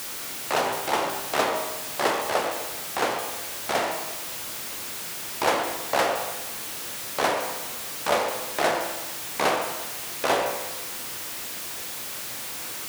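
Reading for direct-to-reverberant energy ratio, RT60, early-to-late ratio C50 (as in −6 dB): 3.0 dB, 1.2 s, 5.0 dB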